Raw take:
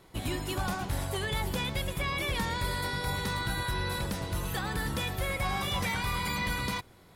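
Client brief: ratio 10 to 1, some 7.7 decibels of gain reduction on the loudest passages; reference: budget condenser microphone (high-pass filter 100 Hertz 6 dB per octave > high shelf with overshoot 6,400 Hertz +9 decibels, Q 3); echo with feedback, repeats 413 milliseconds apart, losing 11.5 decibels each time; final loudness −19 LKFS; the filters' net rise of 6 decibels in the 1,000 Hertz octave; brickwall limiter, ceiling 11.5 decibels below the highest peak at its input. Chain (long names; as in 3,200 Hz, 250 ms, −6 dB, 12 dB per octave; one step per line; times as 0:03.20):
parametric band 1,000 Hz +7 dB
downward compressor 10 to 1, threshold −33 dBFS
brickwall limiter −36.5 dBFS
high-pass filter 100 Hz 6 dB per octave
high shelf with overshoot 6,400 Hz +9 dB, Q 3
repeating echo 413 ms, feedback 27%, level −11.5 dB
level +23 dB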